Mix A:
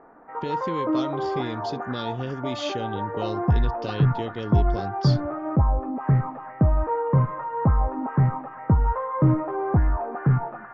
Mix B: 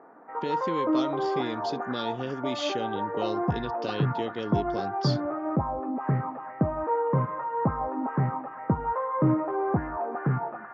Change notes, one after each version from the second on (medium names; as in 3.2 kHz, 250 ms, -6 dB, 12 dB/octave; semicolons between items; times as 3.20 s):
background: add distance through air 160 m; master: add high-pass 190 Hz 12 dB/octave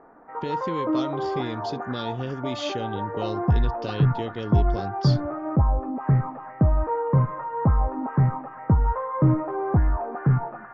master: remove high-pass 190 Hz 12 dB/octave